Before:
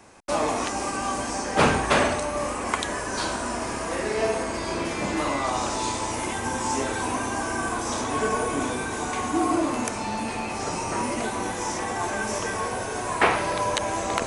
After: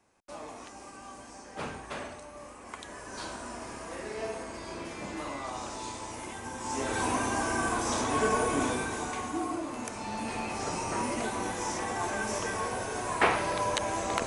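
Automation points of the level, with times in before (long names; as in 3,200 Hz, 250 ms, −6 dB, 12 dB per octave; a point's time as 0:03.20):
0:02.61 −18.5 dB
0:03.22 −11.5 dB
0:06.57 −11.5 dB
0:06.99 −2 dB
0:08.70 −2 dB
0:09.64 −12 dB
0:10.36 −4.5 dB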